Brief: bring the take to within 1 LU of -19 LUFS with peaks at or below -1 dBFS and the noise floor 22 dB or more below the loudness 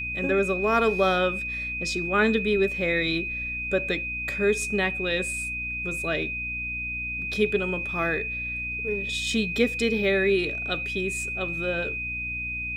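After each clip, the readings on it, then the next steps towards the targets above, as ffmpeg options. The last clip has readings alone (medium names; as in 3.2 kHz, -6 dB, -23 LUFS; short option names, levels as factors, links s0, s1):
hum 60 Hz; highest harmonic 300 Hz; hum level -38 dBFS; steady tone 2.5 kHz; tone level -29 dBFS; loudness -25.5 LUFS; peak level -8.5 dBFS; loudness target -19.0 LUFS
-> -af "bandreject=f=60:t=h:w=6,bandreject=f=120:t=h:w=6,bandreject=f=180:t=h:w=6,bandreject=f=240:t=h:w=6,bandreject=f=300:t=h:w=6"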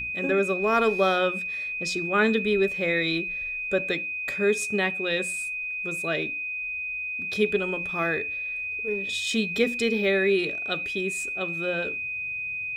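hum not found; steady tone 2.5 kHz; tone level -29 dBFS
-> -af "bandreject=f=2500:w=30"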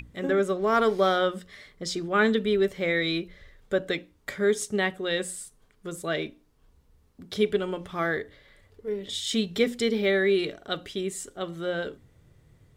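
steady tone not found; loudness -27.0 LUFS; peak level -9.5 dBFS; loudness target -19.0 LUFS
-> -af "volume=2.51"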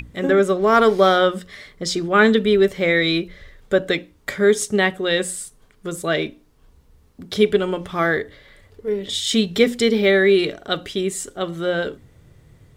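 loudness -19.0 LUFS; peak level -1.5 dBFS; noise floor -55 dBFS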